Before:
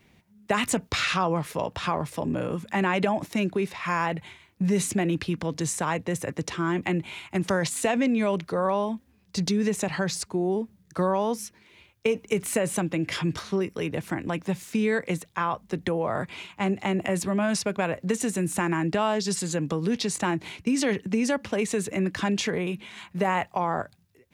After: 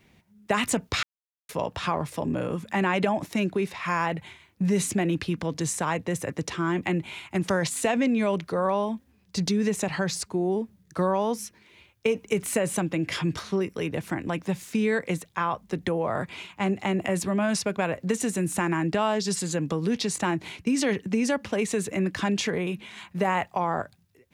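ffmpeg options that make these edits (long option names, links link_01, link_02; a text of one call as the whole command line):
ffmpeg -i in.wav -filter_complex "[0:a]asplit=3[link_01][link_02][link_03];[link_01]atrim=end=1.03,asetpts=PTS-STARTPTS,afade=type=out:start_time=1.026:duration=0.004:curve=hsin[link_04];[link_02]atrim=start=1.03:end=1.49,asetpts=PTS-STARTPTS,volume=0[link_05];[link_03]atrim=start=1.49,asetpts=PTS-STARTPTS,afade=type=in:duration=0.004:curve=hsin[link_06];[link_04][link_05][link_06]concat=n=3:v=0:a=1" out.wav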